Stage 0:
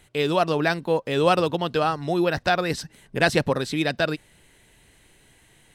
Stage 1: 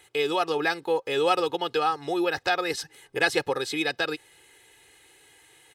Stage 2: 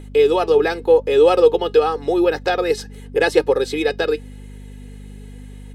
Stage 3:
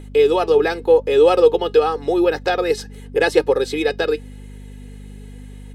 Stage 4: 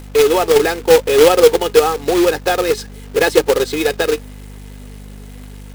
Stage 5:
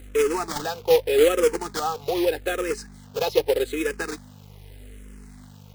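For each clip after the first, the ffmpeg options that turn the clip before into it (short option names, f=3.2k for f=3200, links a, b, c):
-filter_complex "[0:a]highpass=f=470:p=1,aecho=1:1:2.4:0.81,asplit=2[a][b];[b]acompressor=threshold=-28dB:ratio=6,volume=0.5dB[c];[a][c]amix=inputs=2:normalize=0,volume=-6dB"
-af "aeval=exprs='val(0)+0.0158*(sin(2*PI*50*n/s)+sin(2*PI*2*50*n/s)/2+sin(2*PI*3*50*n/s)/3+sin(2*PI*4*50*n/s)/4+sin(2*PI*5*50*n/s)/5)':c=same,flanger=delay=3.2:depth=1.6:regen=79:speed=0.88:shape=sinusoidal,equalizer=f=450:w=1.5:g=13.5,volume=5.5dB"
-af anull
-af "acrusher=bits=2:mode=log:mix=0:aa=0.000001,volume=2.5dB"
-filter_complex "[0:a]asplit=2[a][b];[b]afreqshift=-0.82[c];[a][c]amix=inputs=2:normalize=1,volume=-7dB"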